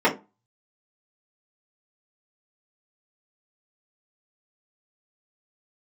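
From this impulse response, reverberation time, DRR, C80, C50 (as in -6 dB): 0.25 s, -7.0 dB, 20.0 dB, 13.5 dB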